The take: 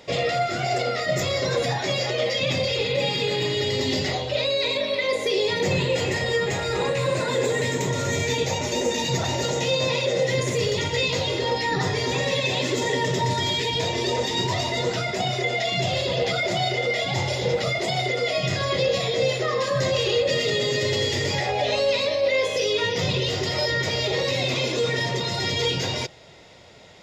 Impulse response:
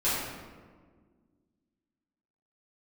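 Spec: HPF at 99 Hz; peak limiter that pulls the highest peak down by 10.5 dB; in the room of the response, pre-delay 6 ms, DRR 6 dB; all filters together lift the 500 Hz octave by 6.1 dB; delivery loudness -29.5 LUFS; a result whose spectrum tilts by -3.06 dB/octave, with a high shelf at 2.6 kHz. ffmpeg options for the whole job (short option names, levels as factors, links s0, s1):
-filter_complex "[0:a]highpass=99,equalizer=f=500:t=o:g=6.5,highshelf=f=2600:g=8,alimiter=limit=0.15:level=0:latency=1,asplit=2[s0][s1];[1:a]atrim=start_sample=2205,adelay=6[s2];[s1][s2]afir=irnorm=-1:irlink=0,volume=0.133[s3];[s0][s3]amix=inputs=2:normalize=0,volume=0.473"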